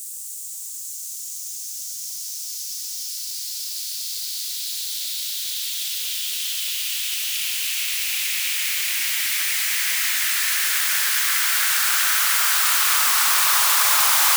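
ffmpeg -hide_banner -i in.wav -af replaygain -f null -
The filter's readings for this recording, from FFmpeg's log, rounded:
track_gain = +3.4 dB
track_peak = 0.423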